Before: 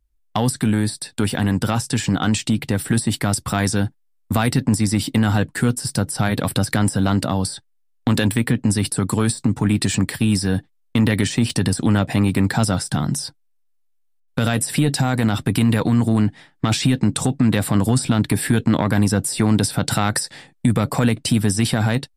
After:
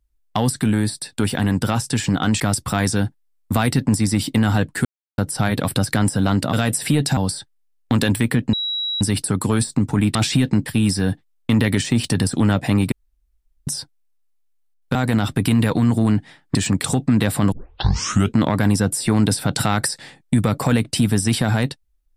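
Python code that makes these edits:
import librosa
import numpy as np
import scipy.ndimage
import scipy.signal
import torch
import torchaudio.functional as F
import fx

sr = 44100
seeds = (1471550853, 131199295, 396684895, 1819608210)

y = fx.edit(x, sr, fx.cut(start_s=2.4, length_s=0.8),
    fx.silence(start_s=5.65, length_s=0.33),
    fx.insert_tone(at_s=8.69, length_s=0.48, hz=3880.0, db=-21.0),
    fx.swap(start_s=9.83, length_s=0.29, other_s=16.65, other_length_s=0.51),
    fx.room_tone_fill(start_s=12.38, length_s=0.75),
    fx.move(start_s=14.41, length_s=0.64, to_s=7.33),
    fx.tape_start(start_s=17.84, length_s=0.82), tone=tone)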